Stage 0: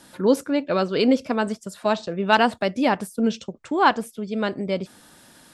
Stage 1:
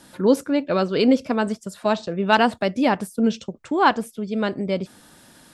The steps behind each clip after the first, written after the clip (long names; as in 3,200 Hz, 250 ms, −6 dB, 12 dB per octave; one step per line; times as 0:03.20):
low-shelf EQ 330 Hz +3 dB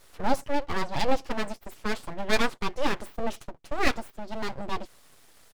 comb filter 7.1 ms, depth 49%
full-wave rectification
level −5.5 dB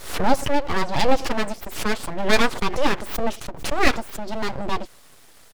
background raised ahead of every attack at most 98 dB per second
level +6 dB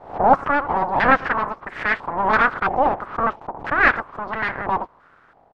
ceiling on every frequency bin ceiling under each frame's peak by 27 dB
low-pass on a step sequencer 3 Hz 780–1,800 Hz
level −6.5 dB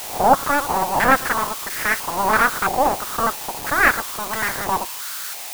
spike at every zero crossing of −17.5 dBFS